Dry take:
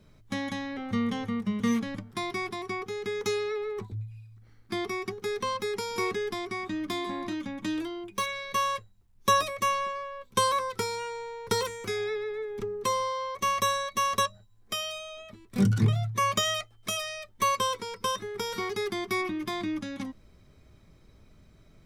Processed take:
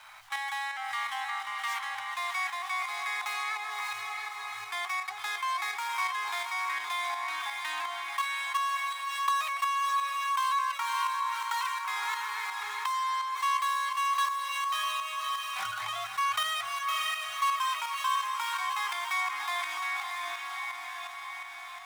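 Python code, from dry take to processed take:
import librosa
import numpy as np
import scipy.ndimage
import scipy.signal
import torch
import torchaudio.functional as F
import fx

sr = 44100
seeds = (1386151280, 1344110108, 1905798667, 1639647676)

y = scipy.signal.medfilt(x, 9)
y = scipy.signal.sosfilt(scipy.signal.ellip(4, 1.0, 40, 790.0, 'highpass', fs=sr, output='sos'), y)
y = fx.echo_diffused(y, sr, ms=607, feedback_pct=45, wet_db=-5)
y = fx.tremolo_shape(y, sr, shape='saw_up', hz=2.8, depth_pct=55)
y = fx.env_flatten(y, sr, amount_pct=50)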